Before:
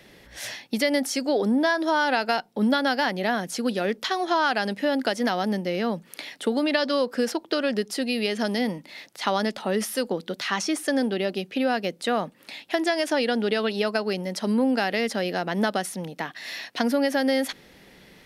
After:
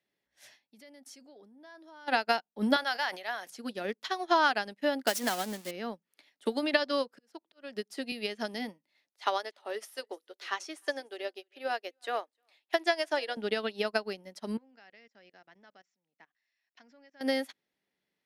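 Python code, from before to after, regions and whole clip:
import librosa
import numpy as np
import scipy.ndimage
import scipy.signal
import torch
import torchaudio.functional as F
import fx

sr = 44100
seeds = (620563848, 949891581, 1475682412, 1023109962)

y = fx.chain(x, sr, fx.low_shelf(hz=150.0, db=10.5),
    fx.level_steps(step_db=16), at=(0.69, 2.08))
y = fx.chain(y, sr, fx.highpass(hz=730.0, slope=12),
    fx.sustainer(db_per_s=35.0), at=(2.76, 3.5))
y = fx.chain(y, sr, fx.crossing_spikes(level_db=-16.0),
    fx.high_shelf(hz=11000.0, db=-8.0), at=(5.07, 5.71))
y = fx.chain(y, sr, fx.auto_swell(attack_ms=374.0),
    fx.band_squash(depth_pct=40), at=(6.45, 8.12))
y = fx.chain(y, sr, fx.cheby2_highpass(hz=170.0, order=4, stop_db=40),
    fx.echo_single(ms=306, db=-20.0), at=(9.13, 13.37))
y = fx.chain(y, sr, fx.cheby_ripple(hz=7400.0, ripple_db=6),
    fx.level_steps(step_db=17), at=(14.57, 17.21))
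y = fx.highpass(y, sr, hz=240.0, slope=6)
y = fx.notch(y, sr, hz=500.0, q=13.0)
y = fx.upward_expand(y, sr, threshold_db=-42.0, expansion=2.5)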